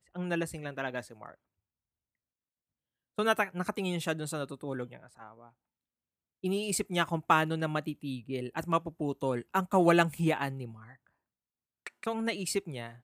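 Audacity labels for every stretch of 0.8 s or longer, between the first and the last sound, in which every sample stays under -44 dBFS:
1.320000	3.180000	silence
5.480000	6.440000	silence
10.920000	11.860000	silence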